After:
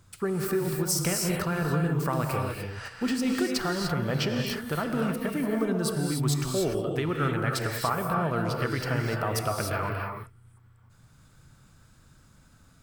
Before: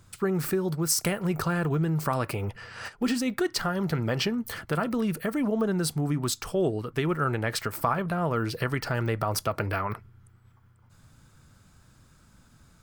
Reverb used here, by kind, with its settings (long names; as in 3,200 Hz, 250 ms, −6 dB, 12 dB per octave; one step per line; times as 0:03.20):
reverb whose tail is shaped and stops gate 320 ms rising, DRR 1 dB
level −2.5 dB